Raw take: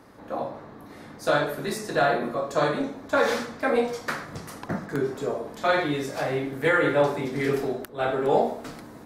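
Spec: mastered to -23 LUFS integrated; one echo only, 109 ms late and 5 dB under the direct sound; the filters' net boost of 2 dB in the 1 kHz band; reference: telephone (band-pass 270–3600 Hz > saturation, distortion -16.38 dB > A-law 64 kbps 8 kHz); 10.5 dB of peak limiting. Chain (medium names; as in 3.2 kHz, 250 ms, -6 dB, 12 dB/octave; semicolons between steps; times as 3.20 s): peaking EQ 1 kHz +3 dB; peak limiter -17.5 dBFS; band-pass 270–3600 Hz; delay 109 ms -5 dB; saturation -21.5 dBFS; trim +7.5 dB; A-law 64 kbps 8 kHz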